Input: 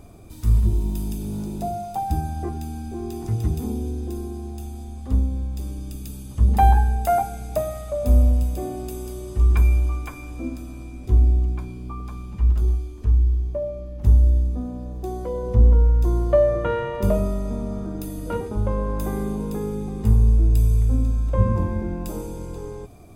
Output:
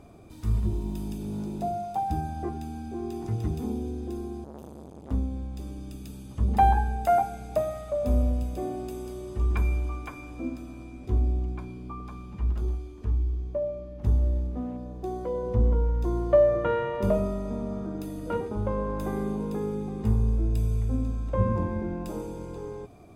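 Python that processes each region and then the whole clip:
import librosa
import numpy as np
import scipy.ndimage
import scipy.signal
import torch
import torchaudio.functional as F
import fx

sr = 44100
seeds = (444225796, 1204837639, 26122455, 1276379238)

y = fx.chain(x, sr, fx.high_shelf(hz=6300.0, db=7.5),
    fx.transformer_sat(knee_hz=760.0), at=(4.44, 5.11))
y = fx.chain(y, sr, fx.median_filter(points=25),
    fx.peak_eq(hz=990.0, db=3.5, octaves=1.6), at=(14.18, 14.77))
y = fx.lowpass(y, sr, hz=3300.0, slope=6)
y = fx.low_shelf(y, sr, hz=86.0, db=-11.0)
y = y * librosa.db_to_amplitude(-1.5)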